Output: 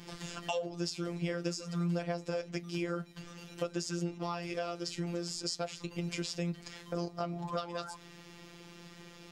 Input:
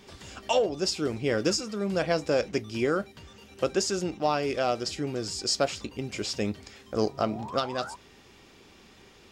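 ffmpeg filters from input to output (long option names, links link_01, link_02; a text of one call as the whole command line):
ffmpeg -i in.wav -af "afftfilt=real='hypot(re,im)*cos(PI*b)':imag='0':win_size=1024:overlap=0.75,acompressor=threshold=-39dB:ratio=4,equalizer=frequency=160:width=6.3:gain=8.5,volume=4.5dB" out.wav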